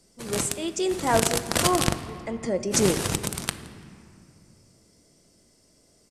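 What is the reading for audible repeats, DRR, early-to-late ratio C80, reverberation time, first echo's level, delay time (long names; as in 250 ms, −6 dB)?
1, 8.5 dB, 13.0 dB, 2.4 s, −23.5 dB, 169 ms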